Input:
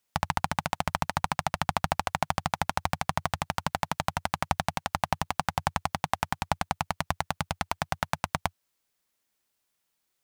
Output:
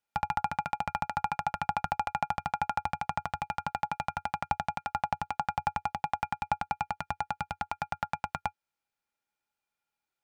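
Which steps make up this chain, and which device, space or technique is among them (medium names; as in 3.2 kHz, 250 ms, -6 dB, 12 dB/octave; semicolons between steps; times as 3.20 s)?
inside a helmet (treble shelf 5.8 kHz -10 dB; small resonant body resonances 840/1400/2400 Hz, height 16 dB, ringing for 75 ms); trim -8.5 dB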